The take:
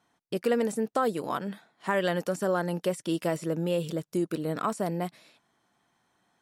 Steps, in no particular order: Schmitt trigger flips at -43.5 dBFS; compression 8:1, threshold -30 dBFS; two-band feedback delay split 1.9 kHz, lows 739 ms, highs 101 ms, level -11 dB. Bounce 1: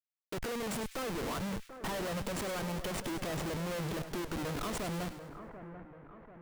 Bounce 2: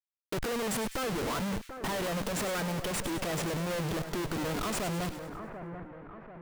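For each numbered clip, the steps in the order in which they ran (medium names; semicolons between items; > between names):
compression > Schmitt trigger > two-band feedback delay; Schmitt trigger > two-band feedback delay > compression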